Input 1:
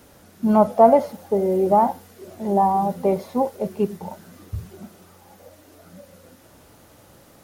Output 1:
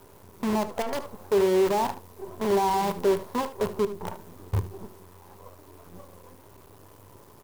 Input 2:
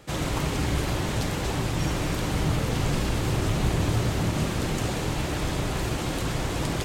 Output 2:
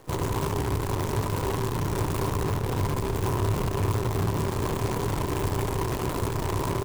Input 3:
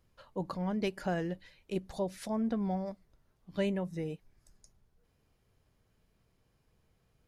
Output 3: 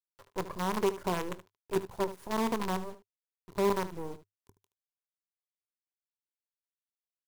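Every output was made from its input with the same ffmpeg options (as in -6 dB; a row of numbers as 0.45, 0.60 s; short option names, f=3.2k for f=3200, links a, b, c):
-af "equalizer=f=3.7k:t=o:w=2.7:g=-11.5,aeval=exprs='0.562*(cos(1*acos(clip(val(0)/0.562,-1,1)))-cos(1*PI/2))+0.251*(cos(2*acos(clip(val(0)/0.562,-1,1)))-cos(2*PI/2))':c=same,acompressor=threshold=-24dB:ratio=4,asoftclip=type=tanh:threshold=-26.5dB,acrusher=bits=6:dc=4:mix=0:aa=0.000001,equalizer=f=100:t=o:w=0.33:g=11,equalizer=f=400:t=o:w=0.33:g=10,equalizer=f=1k:t=o:w=0.33:g=11,aecho=1:1:23|75:0.133|0.2"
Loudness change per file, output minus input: -7.0, -1.0, +2.5 LU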